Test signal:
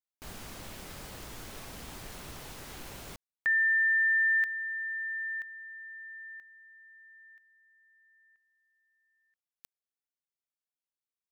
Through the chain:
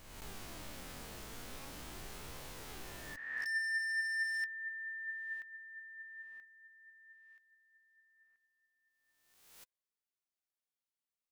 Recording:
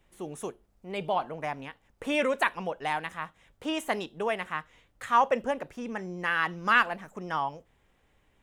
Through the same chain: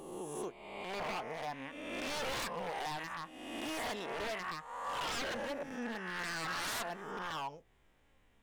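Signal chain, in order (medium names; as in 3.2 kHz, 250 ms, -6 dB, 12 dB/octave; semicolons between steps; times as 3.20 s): reverse spectral sustain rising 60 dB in 1.16 s; in parallel at -3 dB: compression 4:1, threshold -42 dBFS; on the sum: wavefolder -23 dBFS; flange 0.41 Hz, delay 1.7 ms, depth 3 ms, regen +71%; trim -5.5 dB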